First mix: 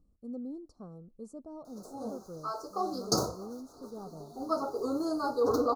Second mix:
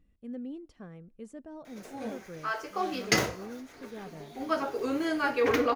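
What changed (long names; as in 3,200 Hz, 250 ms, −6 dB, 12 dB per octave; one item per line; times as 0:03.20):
background: send +9.0 dB
master: remove Chebyshev band-stop filter 1,300–4,200 Hz, order 4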